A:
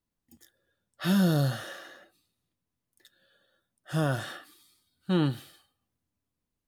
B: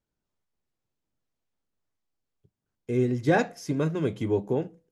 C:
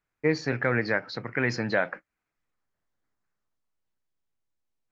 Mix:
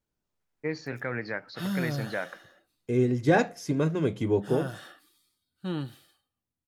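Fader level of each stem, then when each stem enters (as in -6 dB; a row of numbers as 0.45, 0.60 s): -7.0, +0.5, -7.5 dB; 0.55, 0.00, 0.40 s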